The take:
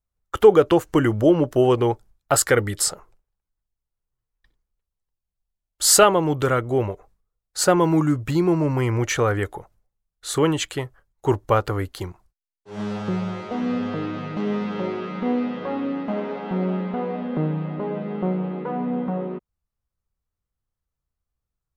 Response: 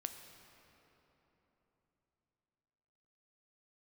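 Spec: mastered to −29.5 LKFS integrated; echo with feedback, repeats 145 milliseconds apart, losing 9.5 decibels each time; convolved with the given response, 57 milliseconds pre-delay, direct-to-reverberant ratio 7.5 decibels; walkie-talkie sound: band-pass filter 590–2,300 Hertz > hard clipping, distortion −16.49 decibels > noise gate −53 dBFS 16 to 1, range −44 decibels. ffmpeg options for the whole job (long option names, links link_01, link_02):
-filter_complex "[0:a]aecho=1:1:145|290|435|580:0.335|0.111|0.0365|0.012,asplit=2[link_01][link_02];[1:a]atrim=start_sample=2205,adelay=57[link_03];[link_02][link_03]afir=irnorm=-1:irlink=0,volume=-5.5dB[link_04];[link_01][link_04]amix=inputs=2:normalize=0,highpass=590,lowpass=2300,asoftclip=type=hard:threshold=-12.5dB,agate=range=-44dB:threshold=-53dB:ratio=16,volume=-1.5dB"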